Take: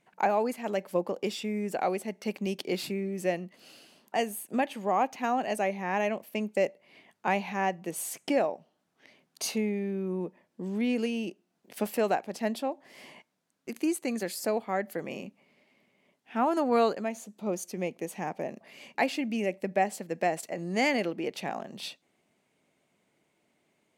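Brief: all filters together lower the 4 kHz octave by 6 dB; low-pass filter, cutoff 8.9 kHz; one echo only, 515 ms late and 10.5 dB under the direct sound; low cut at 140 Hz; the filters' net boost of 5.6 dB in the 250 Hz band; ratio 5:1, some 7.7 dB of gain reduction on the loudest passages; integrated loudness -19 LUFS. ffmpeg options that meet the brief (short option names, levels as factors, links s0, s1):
-af "highpass=140,lowpass=8900,equalizer=f=250:t=o:g=7.5,equalizer=f=4000:t=o:g=-8.5,acompressor=threshold=0.0447:ratio=5,aecho=1:1:515:0.299,volume=5.01"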